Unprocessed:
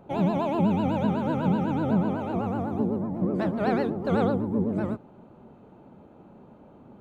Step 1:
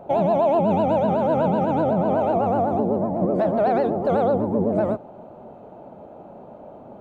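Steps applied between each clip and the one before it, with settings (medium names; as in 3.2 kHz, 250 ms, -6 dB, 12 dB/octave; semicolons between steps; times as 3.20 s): peaking EQ 650 Hz +14.5 dB 0.95 oct; peak limiter -15 dBFS, peak gain reduction 8 dB; trim +2.5 dB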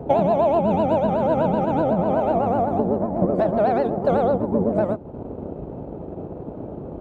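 band noise 43–490 Hz -34 dBFS; transient shaper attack +5 dB, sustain -7 dB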